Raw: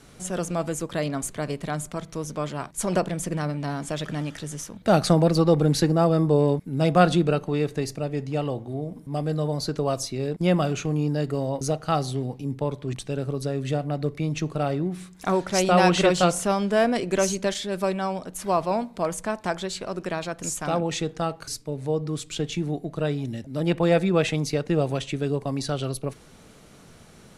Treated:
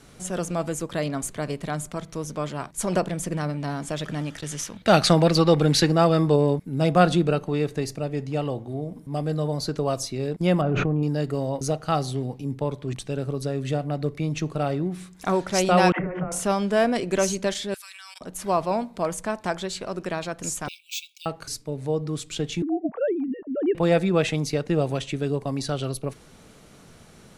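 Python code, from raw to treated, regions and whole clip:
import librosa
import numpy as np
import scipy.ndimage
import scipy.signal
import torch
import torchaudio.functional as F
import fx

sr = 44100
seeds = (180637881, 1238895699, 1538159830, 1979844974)

y = fx.chain(x, sr, fx.peak_eq(hz=2900.0, db=9.0, octaves=2.5),
    fx.gate_hold(open_db=-27.0, close_db=-36.0, hold_ms=71.0, range_db=-21, attack_ms=1.4, release_ms=100.0), at=(4.41, 6.36))
y = fx.chain(y, sr, fx.lowpass(hz=1300.0, slope=12),
    fx.env_flatten(amount_pct=100), at=(10.61, 11.03))
y = fx.chain(y, sr, fx.ellip_lowpass(hz=2100.0, order=4, stop_db=50),
    fx.over_compress(threshold_db=-29.0, ratio=-1.0),
    fx.dispersion(late='lows', ms=92.0, hz=300.0), at=(15.92, 16.32))
y = fx.chain(y, sr, fx.highpass(hz=1400.0, slope=24),
    fx.tilt_eq(slope=4.5),
    fx.level_steps(step_db=22), at=(17.74, 18.21))
y = fx.chain(y, sr, fx.brickwall_highpass(low_hz=2200.0),
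    fx.resample_bad(factor=2, down='none', up='hold'), at=(20.68, 21.26))
y = fx.chain(y, sr, fx.sine_speech(),
    fx.lowpass(hz=1300.0, slope=12),
    fx.low_shelf(hz=190.0, db=7.5), at=(22.62, 23.75))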